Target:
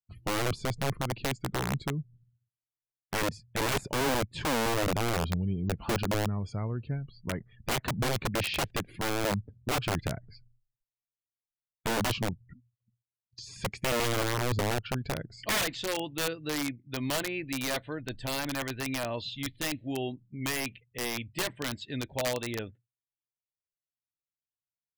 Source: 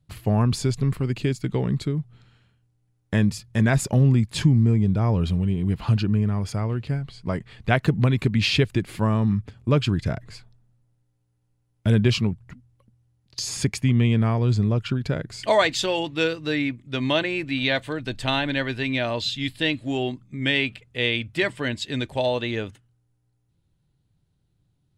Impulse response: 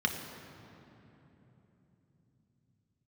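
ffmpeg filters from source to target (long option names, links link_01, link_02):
-filter_complex "[0:a]afftdn=noise_reduction=36:noise_floor=-41,acrossover=split=3900[link_01][link_02];[link_02]acompressor=threshold=-43dB:ratio=4:attack=1:release=60[link_03];[link_01][link_03]amix=inputs=2:normalize=0,aeval=exprs='(mod(5.96*val(0)+1,2)-1)/5.96':channel_layout=same,volume=-7.5dB"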